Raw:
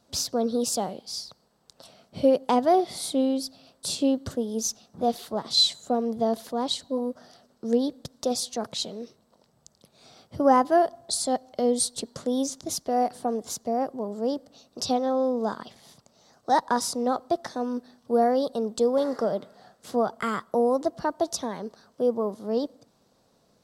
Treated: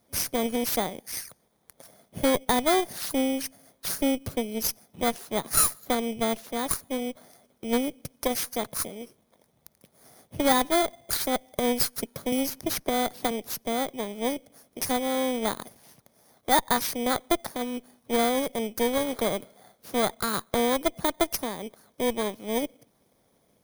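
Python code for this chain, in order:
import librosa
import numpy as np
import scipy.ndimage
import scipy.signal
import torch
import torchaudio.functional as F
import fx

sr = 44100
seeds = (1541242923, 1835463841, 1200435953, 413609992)

y = fx.bit_reversed(x, sr, seeds[0], block=16)
y = fx.cheby_harmonics(y, sr, harmonics=(6,), levels_db=(-16,), full_scale_db=-7.5)
y = fx.hpss(y, sr, part='harmonic', gain_db=-5)
y = fx.band_squash(y, sr, depth_pct=70, at=(12.32, 13.31))
y = y * 10.0 ** (1.0 / 20.0)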